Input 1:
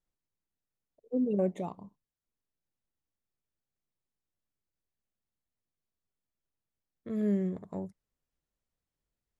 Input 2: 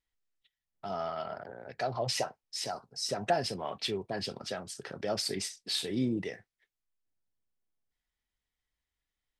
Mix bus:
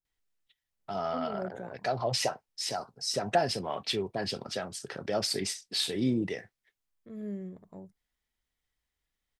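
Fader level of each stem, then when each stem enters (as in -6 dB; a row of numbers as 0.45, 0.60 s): -9.0, +2.5 dB; 0.00, 0.05 s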